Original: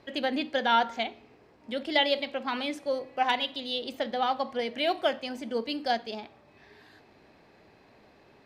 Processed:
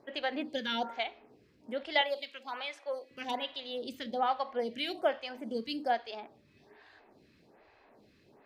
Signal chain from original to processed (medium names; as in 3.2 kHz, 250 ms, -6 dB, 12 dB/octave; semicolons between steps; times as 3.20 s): 2.01–3.11 s: high-pass 660 Hz 12 dB/octave; lamp-driven phase shifter 1.2 Hz; trim -1.5 dB